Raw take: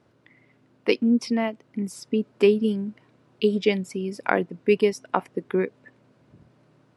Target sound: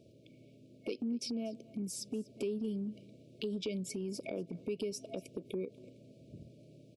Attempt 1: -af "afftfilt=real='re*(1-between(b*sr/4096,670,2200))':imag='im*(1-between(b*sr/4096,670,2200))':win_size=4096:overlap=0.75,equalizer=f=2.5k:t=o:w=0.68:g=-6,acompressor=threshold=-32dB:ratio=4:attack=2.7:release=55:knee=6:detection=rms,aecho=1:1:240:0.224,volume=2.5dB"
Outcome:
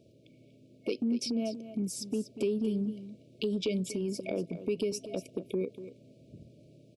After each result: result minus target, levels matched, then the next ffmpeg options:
echo-to-direct +9 dB; compressor: peak gain reduction -6 dB
-af "afftfilt=real='re*(1-between(b*sr/4096,670,2200))':imag='im*(1-between(b*sr/4096,670,2200))':win_size=4096:overlap=0.75,equalizer=f=2.5k:t=o:w=0.68:g=-6,acompressor=threshold=-32dB:ratio=4:attack=2.7:release=55:knee=6:detection=rms,aecho=1:1:240:0.0794,volume=2.5dB"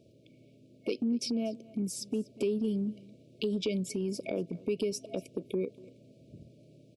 compressor: peak gain reduction -6 dB
-af "afftfilt=real='re*(1-between(b*sr/4096,670,2200))':imag='im*(1-between(b*sr/4096,670,2200))':win_size=4096:overlap=0.75,equalizer=f=2.5k:t=o:w=0.68:g=-6,acompressor=threshold=-40dB:ratio=4:attack=2.7:release=55:knee=6:detection=rms,aecho=1:1:240:0.0794,volume=2.5dB"

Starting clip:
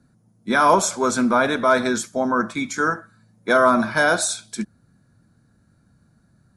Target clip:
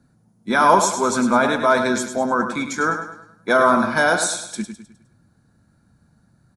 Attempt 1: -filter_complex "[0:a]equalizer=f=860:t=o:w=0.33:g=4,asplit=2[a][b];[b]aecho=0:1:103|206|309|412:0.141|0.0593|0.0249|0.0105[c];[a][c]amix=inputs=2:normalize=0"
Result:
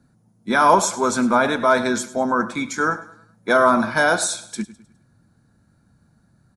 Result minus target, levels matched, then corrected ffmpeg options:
echo-to-direct -8.5 dB
-filter_complex "[0:a]equalizer=f=860:t=o:w=0.33:g=4,asplit=2[a][b];[b]aecho=0:1:103|206|309|412|515:0.376|0.158|0.0663|0.0278|0.0117[c];[a][c]amix=inputs=2:normalize=0"

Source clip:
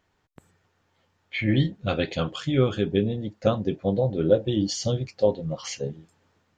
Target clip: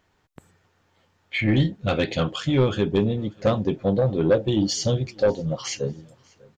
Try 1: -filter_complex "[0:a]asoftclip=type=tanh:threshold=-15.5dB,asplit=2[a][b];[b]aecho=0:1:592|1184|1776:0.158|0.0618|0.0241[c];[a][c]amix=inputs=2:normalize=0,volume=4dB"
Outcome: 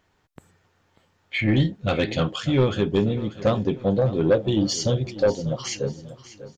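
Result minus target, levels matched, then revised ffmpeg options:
echo-to-direct +11 dB
-filter_complex "[0:a]asoftclip=type=tanh:threshold=-15.5dB,asplit=2[a][b];[b]aecho=0:1:592|1184:0.0447|0.0174[c];[a][c]amix=inputs=2:normalize=0,volume=4dB"

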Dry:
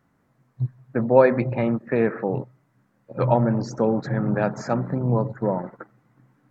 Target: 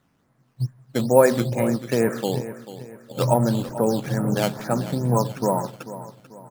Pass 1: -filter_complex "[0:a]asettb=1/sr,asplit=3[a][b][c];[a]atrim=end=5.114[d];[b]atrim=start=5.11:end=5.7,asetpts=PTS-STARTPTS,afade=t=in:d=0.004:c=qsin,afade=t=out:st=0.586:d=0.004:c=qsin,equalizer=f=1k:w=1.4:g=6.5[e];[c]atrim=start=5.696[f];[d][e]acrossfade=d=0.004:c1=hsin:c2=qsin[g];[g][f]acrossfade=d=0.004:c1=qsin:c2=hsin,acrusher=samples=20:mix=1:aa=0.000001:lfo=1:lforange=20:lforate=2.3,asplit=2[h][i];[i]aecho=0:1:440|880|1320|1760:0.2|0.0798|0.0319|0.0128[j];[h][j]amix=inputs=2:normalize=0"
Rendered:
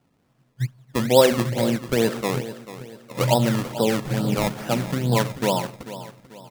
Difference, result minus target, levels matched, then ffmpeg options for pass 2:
decimation with a swept rate: distortion +8 dB
-filter_complex "[0:a]asettb=1/sr,asplit=3[a][b][c];[a]atrim=end=5.114[d];[b]atrim=start=5.11:end=5.7,asetpts=PTS-STARTPTS,afade=t=in:d=0.004:c=qsin,afade=t=out:st=0.586:d=0.004:c=qsin,equalizer=f=1k:w=1.4:g=6.5[e];[c]atrim=start=5.696[f];[d][e]acrossfade=d=0.004:c1=hsin:c2=qsin[g];[g][f]acrossfade=d=0.004:c1=qsin:c2=hsin,acrusher=samples=8:mix=1:aa=0.000001:lfo=1:lforange=8:lforate=2.3,asplit=2[h][i];[i]aecho=0:1:440|880|1320|1760:0.2|0.0798|0.0319|0.0128[j];[h][j]amix=inputs=2:normalize=0"

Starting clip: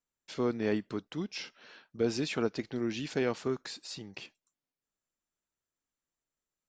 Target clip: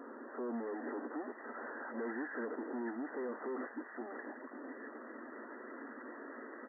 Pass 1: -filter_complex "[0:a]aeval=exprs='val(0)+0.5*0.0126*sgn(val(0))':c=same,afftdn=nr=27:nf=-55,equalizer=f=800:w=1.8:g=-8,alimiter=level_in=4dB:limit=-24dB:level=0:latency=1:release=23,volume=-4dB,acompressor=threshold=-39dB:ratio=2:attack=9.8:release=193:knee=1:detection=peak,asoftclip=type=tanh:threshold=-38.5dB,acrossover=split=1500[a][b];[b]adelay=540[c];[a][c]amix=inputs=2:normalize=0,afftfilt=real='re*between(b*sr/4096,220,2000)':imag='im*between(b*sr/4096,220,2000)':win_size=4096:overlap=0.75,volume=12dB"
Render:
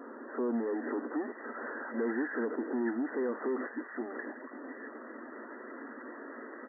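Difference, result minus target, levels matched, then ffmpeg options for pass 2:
soft clip: distortion -7 dB
-filter_complex "[0:a]aeval=exprs='val(0)+0.5*0.0126*sgn(val(0))':c=same,afftdn=nr=27:nf=-55,equalizer=f=800:w=1.8:g=-8,alimiter=level_in=4dB:limit=-24dB:level=0:latency=1:release=23,volume=-4dB,acompressor=threshold=-39dB:ratio=2:attack=9.8:release=193:knee=1:detection=peak,asoftclip=type=tanh:threshold=-49dB,acrossover=split=1500[a][b];[b]adelay=540[c];[a][c]amix=inputs=2:normalize=0,afftfilt=real='re*between(b*sr/4096,220,2000)':imag='im*between(b*sr/4096,220,2000)':win_size=4096:overlap=0.75,volume=12dB"

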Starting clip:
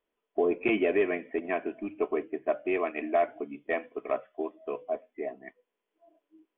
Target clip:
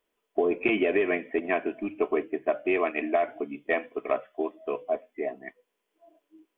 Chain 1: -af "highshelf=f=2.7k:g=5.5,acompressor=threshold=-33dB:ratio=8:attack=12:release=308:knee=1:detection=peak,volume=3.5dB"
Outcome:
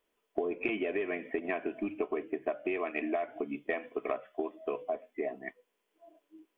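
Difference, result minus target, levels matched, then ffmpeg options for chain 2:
compressor: peak gain reduction +9 dB
-af "highshelf=f=2.7k:g=5.5,acompressor=threshold=-23dB:ratio=8:attack=12:release=308:knee=1:detection=peak,volume=3.5dB"

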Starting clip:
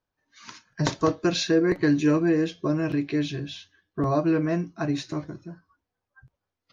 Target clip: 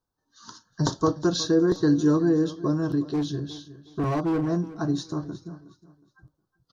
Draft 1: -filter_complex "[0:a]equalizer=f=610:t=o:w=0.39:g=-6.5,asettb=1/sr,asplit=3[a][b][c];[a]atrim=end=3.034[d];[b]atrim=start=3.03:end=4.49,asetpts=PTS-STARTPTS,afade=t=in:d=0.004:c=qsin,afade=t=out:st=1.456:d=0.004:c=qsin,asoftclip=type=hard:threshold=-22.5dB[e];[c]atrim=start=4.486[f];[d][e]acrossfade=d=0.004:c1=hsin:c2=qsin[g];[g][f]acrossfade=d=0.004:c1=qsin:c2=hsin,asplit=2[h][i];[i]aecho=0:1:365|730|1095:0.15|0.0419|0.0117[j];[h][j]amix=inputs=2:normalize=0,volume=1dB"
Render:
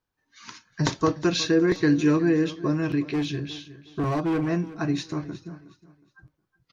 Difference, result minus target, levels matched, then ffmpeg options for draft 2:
2000 Hz band +7.5 dB
-filter_complex "[0:a]asuperstop=centerf=2300:order=4:qfactor=1,equalizer=f=610:t=o:w=0.39:g=-6.5,asettb=1/sr,asplit=3[a][b][c];[a]atrim=end=3.034[d];[b]atrim=start=3.03:end=4.49,asetpts=PTS-STARTPTS,afade=t=in:d=0.004:c=qsin,afade=t=out:st=1.456:d=0.004:c=qsin,asoftclip=type=hard:threshold=-22.5dB[e];[c]atrim=start=4.486[f];[d][e]acrossfade=d=0.004:c1=hsin:c2=qsin[g];[g][f]acrossfade=d=0.004:c1=qsin:c2=hsin,asplit=2[h][i];[i]aecho=0:1:365|730|1095:0.15|0.0419|0.0117[j];[h][j]amix=inputs=2:normalize=0,volume=1dB"

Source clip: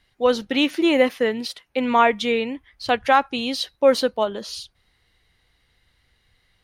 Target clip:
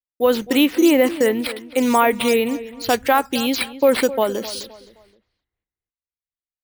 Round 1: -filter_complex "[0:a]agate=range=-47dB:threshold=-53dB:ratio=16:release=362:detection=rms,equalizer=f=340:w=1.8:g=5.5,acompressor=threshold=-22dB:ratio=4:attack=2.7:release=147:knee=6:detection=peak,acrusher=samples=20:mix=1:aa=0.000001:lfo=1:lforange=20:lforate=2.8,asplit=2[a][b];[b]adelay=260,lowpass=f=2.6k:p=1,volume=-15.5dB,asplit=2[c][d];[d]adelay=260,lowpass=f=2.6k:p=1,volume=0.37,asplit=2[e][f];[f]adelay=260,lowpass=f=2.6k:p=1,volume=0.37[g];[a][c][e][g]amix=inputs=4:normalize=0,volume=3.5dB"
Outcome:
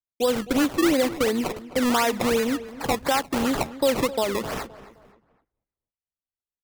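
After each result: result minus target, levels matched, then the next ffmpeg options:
compressor: peak gain reduction +6.5 dB; decimation with a swept rate: distortion +10 dB
-filter_complex "[0:a]agate=range=-47dB:threshold=-53dB:ratio=16:release=362:detection=rms,equalizer=f=340:w=1.8:g=5.5,acompressor=threshold=-13dB:ratio=4:attack=2.7:release=147:knee=6:detection=peak,acrusher=samples=20:mix=1:aa=0.000001:lfo=1:lforange=20:lforate=2.8,asplit=2[a][b];[b]adelay=260,lowpass=f=2.6k:p=1,volume=-15.5dB,asplit=2[c][d];[d]adelay=260,lowpass=f=2.6k:p=1,volume=0.37,asplit=2[e][f];[f]adelay=260,lowpass=f=2.6k:p=1,volume=0.37[g];[a][c][e][g]amix=inputs=4:normalize=0,volume=3.5dB"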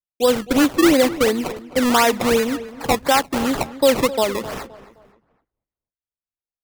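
decimation with a swept rate: distortion +9 dB
-filter_complex "[0:a]agate=range=-47dB:threshold=-53dB:ratio=16:release=362:detection=rms,equalizer=f=340:w=1.8:g=5.5,acompressor=threshold=-13dB:ratio=4:attack=2.7:release=147:knee=6:detection=peak,acrusher=samples=5:mix=1:aa=0.000001:lfo=1:lforange=5:lforate=2.8,asplit=2[a][b];[b]adelay=260,lowpass=f=2.6k:p=1,volume=-15.5dB,asplit=2[c][d];[d]adelay=260,lowpass=f=2.6k:p=1,volume=0.37,asplit=2[e][f];[f]adelay=260,lowpass=f=2.6k:p=1,volume=0.37[g];[a][c][e][g]amix=inputs=4:normalize=0,volume=3.5dB"

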